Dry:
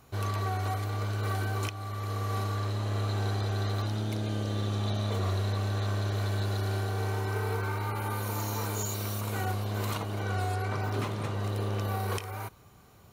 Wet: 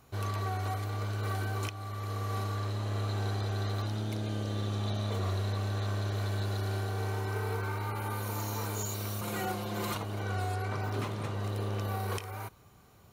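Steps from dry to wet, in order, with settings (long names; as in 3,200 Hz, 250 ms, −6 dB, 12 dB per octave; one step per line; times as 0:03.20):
0:09.21–0:09.95: comb filter 5.7 ms, depth 93%
level −2.5 dB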